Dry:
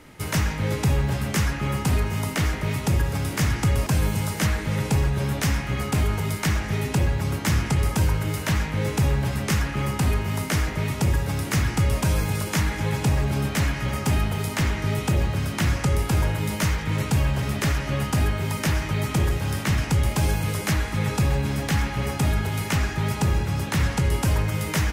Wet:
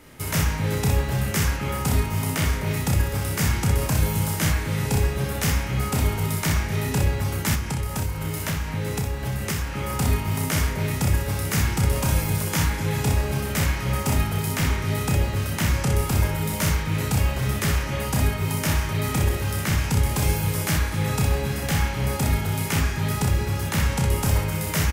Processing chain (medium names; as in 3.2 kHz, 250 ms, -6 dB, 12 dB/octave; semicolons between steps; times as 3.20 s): treble shelf 11 kHz +10.5 dB; early reflections 31 ms -5 dB, 62 ms -4.5 dB; 7.54–9.90 s: compression, threshold -21 dBFS, peak gain reduction 8.5 dB; trim -2 dB